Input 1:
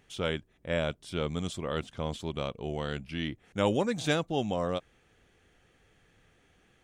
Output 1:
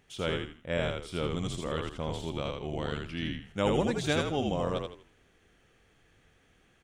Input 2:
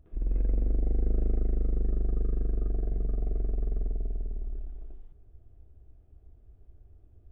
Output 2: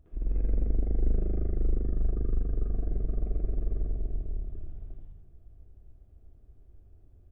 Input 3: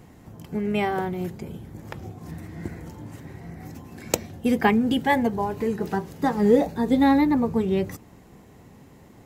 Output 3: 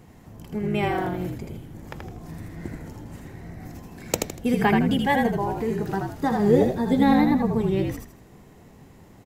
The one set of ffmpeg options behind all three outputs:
ffmpeg -i in.wav -filter_complex "[0:a]asplit=5[link_01][link_02][link_03][link_04][link_05];[link_02]adelay=80,afreqshift=-53,volume=-3.5dB[link_06];[link_03]adelay=160,afreqshift=-106,volume=-13.7dB[link_07];[link_04]adelay=240,afreqshift=-159,volume=-23.8dB[link_08];[link_05]adelay=320,afreqshift=-212,volume=-34dB[link_09];[link_01][link_06][link_07][link_08][link_09]amix=inputs=5:normalize=0,volume=-1.5dB" out.wav

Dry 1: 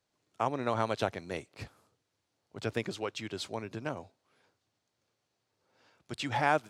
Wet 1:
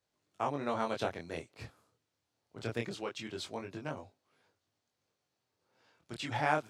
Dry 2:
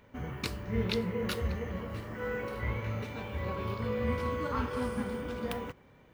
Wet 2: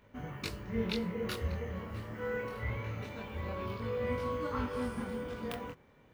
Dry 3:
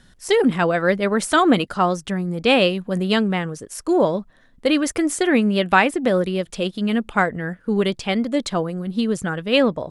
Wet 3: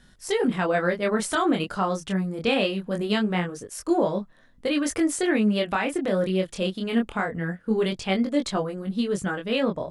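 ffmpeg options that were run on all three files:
ffmpeg -i in.wav -af "alimiter=limit=-11dB:level=0:latency=1:release=154,flanger=delay=20:depth=6.5:speed=0.23" out.wav

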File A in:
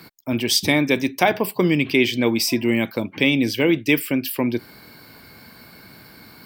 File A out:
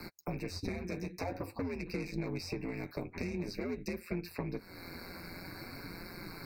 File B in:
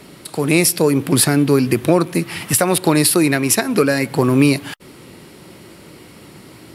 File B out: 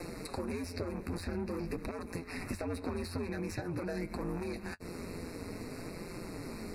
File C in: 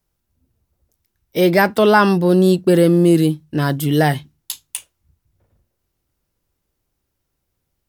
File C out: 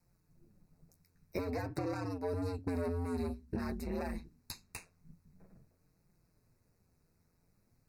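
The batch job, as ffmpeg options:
ffmpeg -i in.wav -filter_complex "[0:a]aeval=exprs='(tanh(6.31*val(0)+0.25)-tanh(0.25))/6.31':channel_layout=same,aeval=exprs='val(0)*sin(2*PI*88*n/s)':channel_layout=same,acrossover=split=710|4800[link_01][link_02][link_03];[link_01]acompressor=threshold=-28dB:ratio=4[link_04];[link_02]acompressor=threshold=-35dB:ratio=4[link_05];[link_03]acompressor=threshold=-46dB:ratio=4[link_06];[link_04][link_05][link_06]amix=inputs=3:normalize=0,lowshelf=frequency=490:gain=4,acompressor=threshold=-40dB:ratio=3,flanger=delay=5.7:depth=6.8:regen=-31:speed=0.49:shape=sinusoidal,asuperstop=centerf=3200:order=12:qfactor=2.8,highshelf=frequency=11000:gain=-6.5,volume=5.5dB" out.wav

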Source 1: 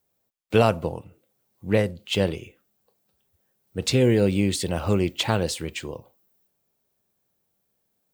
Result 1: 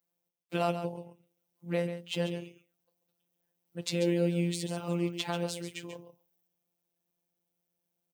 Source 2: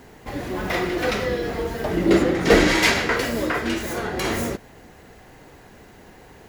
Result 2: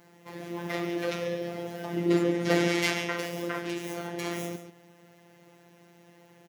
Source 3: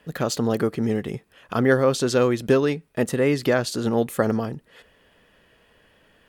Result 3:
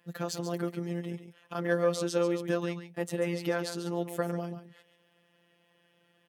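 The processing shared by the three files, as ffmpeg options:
ffmpeg -i in.wav -af "afftfilt=real='hypot(re,im)*cos(PI*b)':imag='0':win_size=1024:overlap=0.75,highpass=frequency=100:width=0.5412,highpass=frequency=100:width=1.3066,aecho=1:1:139:0.316,volume=-6.5dB" out.wav

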